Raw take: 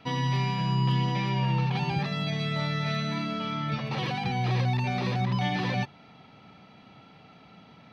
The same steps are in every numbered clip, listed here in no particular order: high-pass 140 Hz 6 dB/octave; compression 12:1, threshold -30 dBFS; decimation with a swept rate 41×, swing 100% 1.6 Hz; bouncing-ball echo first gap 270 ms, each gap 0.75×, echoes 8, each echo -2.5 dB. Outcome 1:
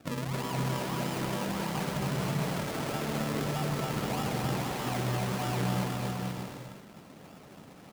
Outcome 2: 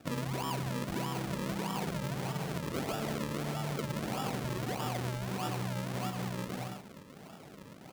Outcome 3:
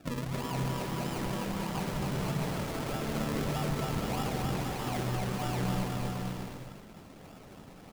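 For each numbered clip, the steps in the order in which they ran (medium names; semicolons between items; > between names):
decimation with a swept rate > high-pass > compression > bouncing-ball echo; bouncing-ball echo > decimation with a swept rate > compression > high-pass; compression > high-pass > decimation with a swept rate > bouncing-ball echo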